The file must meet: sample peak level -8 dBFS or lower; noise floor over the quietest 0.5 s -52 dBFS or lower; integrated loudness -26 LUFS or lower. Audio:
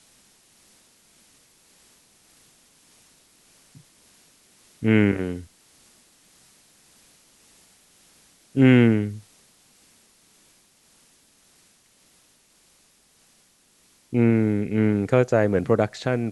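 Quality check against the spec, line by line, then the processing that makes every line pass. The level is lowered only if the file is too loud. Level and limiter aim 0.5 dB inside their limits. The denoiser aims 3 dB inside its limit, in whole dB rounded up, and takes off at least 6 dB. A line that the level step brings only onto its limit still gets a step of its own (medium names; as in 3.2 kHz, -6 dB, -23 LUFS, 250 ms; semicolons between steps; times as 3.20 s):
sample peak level -4.5 dBFS: fail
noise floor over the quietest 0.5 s -60 dBFS: pass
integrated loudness -21.0 LUFS: fail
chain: trim -5.5 dB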